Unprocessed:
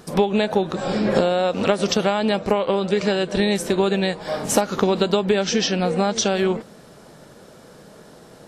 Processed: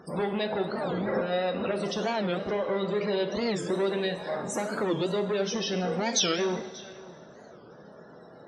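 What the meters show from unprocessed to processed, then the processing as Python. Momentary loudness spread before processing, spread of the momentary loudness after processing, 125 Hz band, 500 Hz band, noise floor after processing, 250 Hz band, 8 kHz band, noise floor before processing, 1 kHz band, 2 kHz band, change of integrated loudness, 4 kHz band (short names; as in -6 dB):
4 LU, 6 LU, -8.5 dB, -8.0 dB, -50 dBFS, -9.0 dB, -6.5 dB, -46 dBFS, -9.0 dB, -7.0 dB, -8.0 dB, -7.0 dB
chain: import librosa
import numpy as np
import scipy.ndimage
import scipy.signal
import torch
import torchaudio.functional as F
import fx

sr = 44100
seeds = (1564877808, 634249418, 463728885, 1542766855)

y = 10.0 ** (-21.0 / 20.0) * np.tanh(x / 10.0 ** (-21.0 / 20.0))
y = fx.low_shelf(y, sr, hz=220.0, db=-6.0)
y = fx.spec_topn(y, sr, count=64)
y = fx.high_shelf(y, sr, hz=4600.0, db=-5.5)
y = fx.small_body(y, sr, hz=(2000.0, 3800.0), ring_ms=45, db=11)
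y = fx.spec_box(y, sr, start_s=6.07, length_s=0.29, low_hz=1500.0, high_hz=9000.0, gain_db=9)
y = scipy.signal.sosfilt(scipy.signal.butter(2, 48.0, 'highpass', fs=sr, output='sos'), y)
y = y + 10.0 ** (-20.5 / 20.0) * np.pad(y, (int(566 * sr / 1000.0), 0))[:len(y)]
y = fx.rev_double_slope(y, sr, seeds[0], early_s=0.81, late_s=3.0, knee_db=-18, drr_db=5.5)
y = fx.record_warp(y, sr, rpm=45.0, depth_cents=250.0)
y = y * 10.0 ** (-3.0 / 20.0)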